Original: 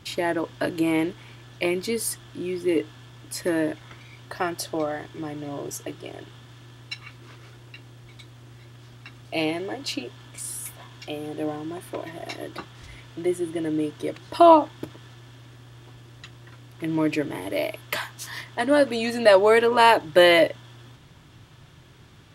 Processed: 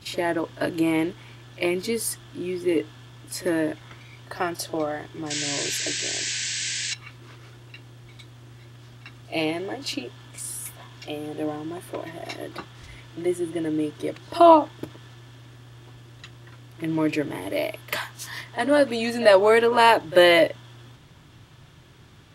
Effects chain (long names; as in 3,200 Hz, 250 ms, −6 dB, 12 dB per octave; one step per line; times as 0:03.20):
sound drawn into the spectrogram noise, 0:05.30–0:06.94, 1,500–8,200 Hz −29 dBFS
echo ahead of the sound 43 ms −18 dB